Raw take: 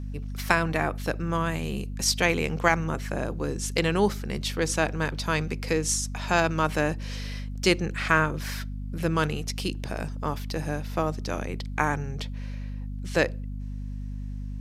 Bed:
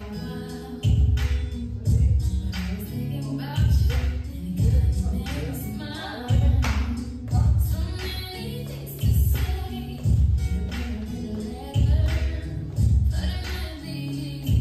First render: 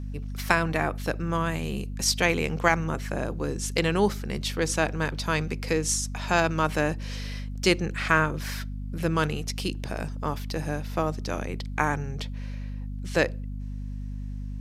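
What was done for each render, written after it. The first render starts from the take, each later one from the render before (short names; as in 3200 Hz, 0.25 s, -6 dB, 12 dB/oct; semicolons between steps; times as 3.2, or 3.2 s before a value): nothing audible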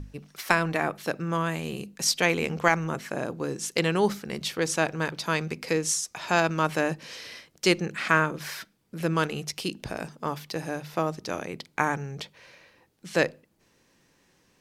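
notches 50/100/150/200/250 Hz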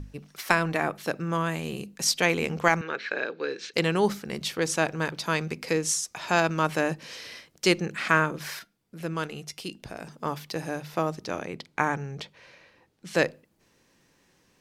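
2.81–3.74 speaker cabinet 430–4600 Hz, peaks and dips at 440 Hz +7 dB, 700 Hz -7 dB, 1000 Hz -6 dB, 1600 Hz +10 dB, 2400 Hz +8 dB, 4000 Hz +10 dB; 8.59–10.07 resonator 700 Hz, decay 0.15 s, mix 50%; 11.25–13.07 high shelf 9300 Hz -11 dB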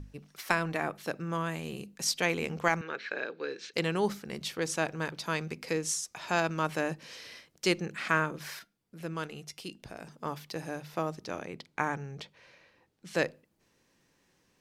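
gain -5.5 dB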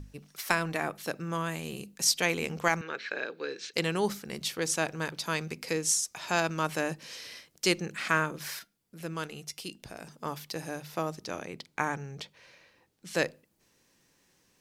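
high shelf 4500 Hz +8 dB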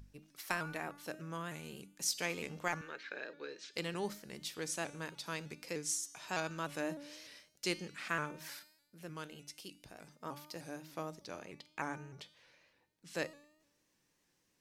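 resonator 300 Hz, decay 0.85 s, mix 70%; shaped vibrato saw up 3.3 Hz, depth 100 cents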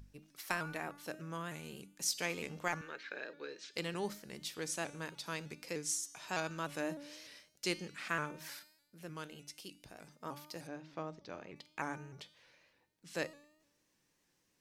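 10.67–11.56 air absorption 150 m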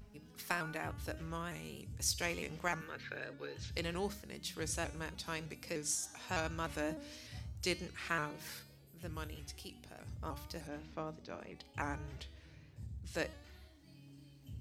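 add bed -27.5 dB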